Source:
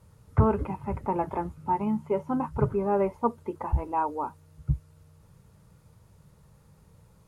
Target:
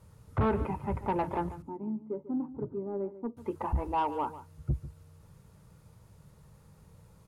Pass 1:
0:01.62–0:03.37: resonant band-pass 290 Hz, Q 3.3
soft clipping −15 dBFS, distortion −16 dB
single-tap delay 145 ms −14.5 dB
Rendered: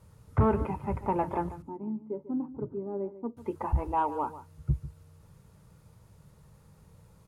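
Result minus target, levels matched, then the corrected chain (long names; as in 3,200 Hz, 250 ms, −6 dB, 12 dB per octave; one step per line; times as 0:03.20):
soft clipping: distortion −7 dB
0:01.62–0:03.37: resonant band-pass 290 Hz, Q 3.3
soft clipping −22 dBFS, distortion −9 dB
single-tap delay 145 ms −14.5 dB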